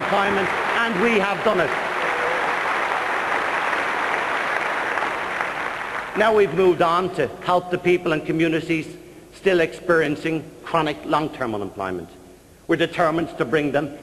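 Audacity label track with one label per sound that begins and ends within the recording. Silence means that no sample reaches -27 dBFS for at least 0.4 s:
9.460000	12.040000	sound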